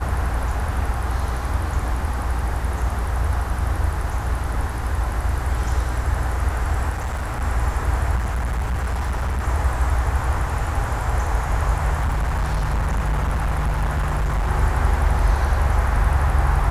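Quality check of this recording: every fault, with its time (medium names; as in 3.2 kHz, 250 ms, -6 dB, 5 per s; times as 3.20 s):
6.89–7.43 s: clipped -21.5 dBFS
8.15–9.48 s: clipped -19.5 dBFS
11.97–14.51 s: clipped -17.5 dBFS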